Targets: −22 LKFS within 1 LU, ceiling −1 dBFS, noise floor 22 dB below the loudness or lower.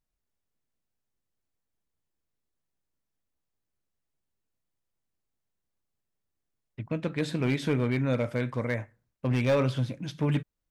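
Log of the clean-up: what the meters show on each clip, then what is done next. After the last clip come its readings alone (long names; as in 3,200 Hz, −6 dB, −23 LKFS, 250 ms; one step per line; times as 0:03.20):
share of clipped samples 0.4%; peaks flattened at −19.0 dBFS; integrated loudness −29.0 LKFS; sample peak −19.0 dBFS; target loudness −22.0 LKFS
→ clipped peaks rebuilt −19 dBFS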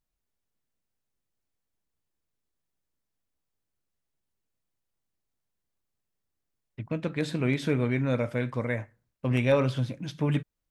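share of clipped samples 0.0%; integrated loudness −28.5 LKFS; sample peak −11.5 dBFS; target loudness −22.0 LKFS
→ level +6.5 dB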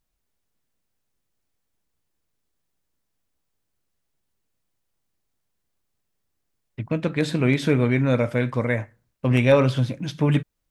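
integrated loudness −22.0 LKFS; sample peak −5.0 dBFS; background noise floor −77 dBFS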